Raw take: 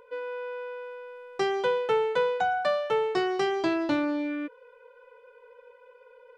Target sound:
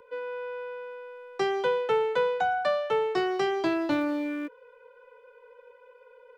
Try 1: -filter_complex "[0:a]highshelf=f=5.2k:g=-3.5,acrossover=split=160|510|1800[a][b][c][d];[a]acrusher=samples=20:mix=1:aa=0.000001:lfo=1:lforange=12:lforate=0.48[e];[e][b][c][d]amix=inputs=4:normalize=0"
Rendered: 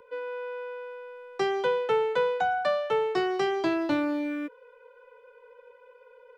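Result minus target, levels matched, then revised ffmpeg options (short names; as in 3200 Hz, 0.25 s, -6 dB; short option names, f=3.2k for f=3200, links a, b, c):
decimation with a swept rate: distortion -12 dB
-filter_complex "[0:a]highshelf=f=5.2k:g=-3.5,acrossover=split=160|510|1800[a][b][c][d];[a]acrusher=samples=56:mix=1:aa=0.000001:lfo=1:lforange=33.6:lforate=0.48[e];[e][b][c][d]amix=inputs=4:normalize=0"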